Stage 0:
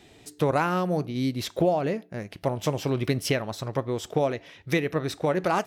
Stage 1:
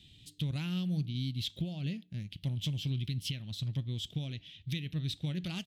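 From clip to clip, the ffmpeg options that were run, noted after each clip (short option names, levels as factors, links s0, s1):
-af "firequalizer=gain_entry='entry(140,0);entry(430,-26);entry(660,-28);entry(1100,-30);entry(3200,4);entry(5500,-10)':delay=0.05:min_phase=1,alimiter=level_in=1.06:limit=0.0631:level=0:latency=1:release=232,volume=0.944"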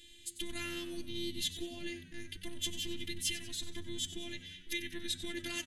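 -filter_complex "[0:a]afftfilt=real='hypot(re,im)*cos(PI*b)':imag='0':win_size=512:overlap=0.75,superequalizer=8b=0.562:11b=2.82:15b=3.16:16b=3.55,asplit=6[s0][s1][s2][s3][s4][s5];[s1]adelay=94,afreqshift=-92,volume=0.224[s6];[s2]adelay=188,afreqshift=-184,volume=0.11[s7];[s3]adelay=282,afreqshift=-276,volume=0.0537[s8];[s4]adelay=376,afreqshift=-368,volume=0.0263[s9];[s5]adelay=470,afreqshift=-460,volume=0.0129[s10];[s0][s6][s7][s8][s9][s10]amix=inputs=6:normalize=0,volume=1.78"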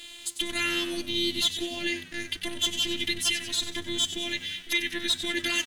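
-filter_complex "[0:a]asplit=2[s0][s1];[s1]alimiter=level_in=1.06:limit=0.0631:level=0:latency=1:release=404,volume=0.944,volume=0.944[s2];[s0][s2]amix=inputs=2:normalize=0,asplit=2[s3][s4];[s4]highpass=f=720:p=1,volume=4.47,asoftclip=type=tanh:threshold=0.251[s5];[s3][s5]amix=inputs=2:normalize=0,lowpass=f=6100:p=1,volume=0.501,aeval=exprs='sgn(val(0))*max(abs(val(0))-0.00188,0)':c=same,volume=1.41"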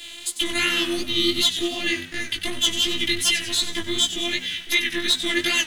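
-filter_complex "[0:a]acrossover=split=260|1800|5600[s0][s1][s2][s3];[s0]acrusher=samples=28:mix=1:aa=0.000001[s4];[s4][s1][s2][s3]amix=inputs=4:normalize=0,flanger=delay=15.5:depth=4.8:speed=2.7,volume=2.82"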